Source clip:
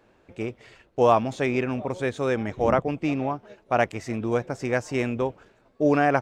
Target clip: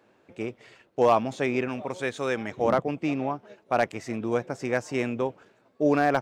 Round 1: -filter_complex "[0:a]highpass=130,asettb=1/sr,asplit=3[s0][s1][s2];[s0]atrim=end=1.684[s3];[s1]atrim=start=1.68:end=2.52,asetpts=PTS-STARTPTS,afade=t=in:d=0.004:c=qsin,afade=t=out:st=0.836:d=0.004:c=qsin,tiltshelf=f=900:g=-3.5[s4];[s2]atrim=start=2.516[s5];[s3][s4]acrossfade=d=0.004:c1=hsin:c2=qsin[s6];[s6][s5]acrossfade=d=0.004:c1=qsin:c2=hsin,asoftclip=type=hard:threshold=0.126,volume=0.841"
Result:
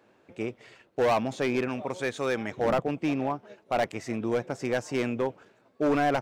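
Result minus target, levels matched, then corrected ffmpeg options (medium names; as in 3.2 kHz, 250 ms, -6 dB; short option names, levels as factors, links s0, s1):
hard clipper: distortion +14 dB
-filter_complex "[0:a]highpass=130,asettb=1/sr,asplit=3[s0][s1][s2];[s0]atrim=end=1.684[s3];[s1]atrim=start=1.68:end=2.52,asetpts=PTS-STARTPTS,afade=t=in:d=0.004:c=qsin,afade=t=out:st=0.836:d=0.004:c=qsin,tiltshelf=f=900:g=-3.5[s4];[s2]atrim=start=2.516[s5];[s3][s4]acrossfade=d=0.004:c1=hsin:c2=qsin[s6];[s6][s5]acrossfade=d=0.004:c1=qsin:c2=hsin,asoftclip=type=hard:threshold=0.316,volume=0.841"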